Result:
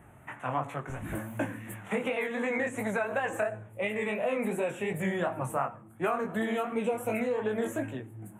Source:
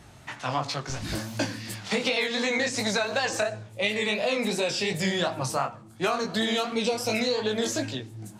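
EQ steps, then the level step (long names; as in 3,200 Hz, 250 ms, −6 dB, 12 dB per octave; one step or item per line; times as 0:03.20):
Butterworth band-reject 4,800 Hz, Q 0.62
low-shelf EQ 74 Hz −5.5 dB
−2.5 dB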